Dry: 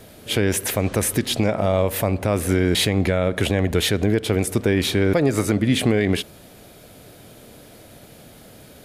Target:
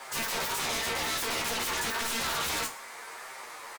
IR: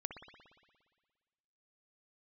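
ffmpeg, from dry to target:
-filter_complex "[0:a]bandreject=f=60:t=h:w=6,bandreject=f=120:t=h:w=6,bandreject=f=180:t=h:w=6,aeval=exprs='val(0)*sin(2*PI*290*n/s)':c=same,acrossover=split=430|2100[a][b][c];[b]alimiter=limit=-20.5dB:level=0:latency=1[d];[a][d][c]amix=inputs=3:normalize=0,flanger=delay=17.5:depth=3.3:speed=0.77,asoftclip=type=tanh:threshold=-25.5dB,acrossover=split=210 6200:gain=0.0708 1 0.141[e][f][g];[e][f][g]amix=inputs=3:normalize=0,aeval=exprs='0.015*(abs(mod(val(0)/0.015+3,4)-2)-1)':c=same,asplit=2[h][i];[i]aecho=0:1:30|69|119.7|185.6|271.3:0.631|0.398|0.251|0.158|0.1[j];[h][j]amix=inputs=2:normalize=0,asetrate=103194,aresample=44100,volume=8dB"

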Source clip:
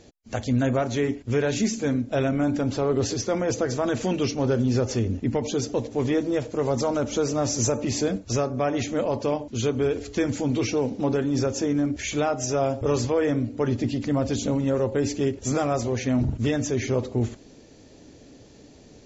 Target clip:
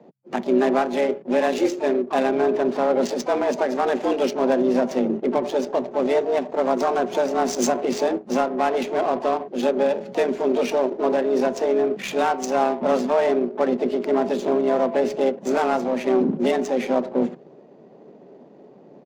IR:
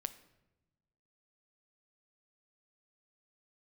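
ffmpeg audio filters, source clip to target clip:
-filter_complex "[0:a]afreqshift=130,asplit=3[a][b][c];[b]asetrate=33038,aresample=44100,atempo=1.33484,volume=-17dB[d];[c]asetrate=66075,aresample=44100,atempo=0.66742,volume=-12dB[e];[a][d][e]amix=inputs=3:normalize=0,adynamicsmooth=sensitivity=4.5:basefreq=1.1k,volume=3dB"

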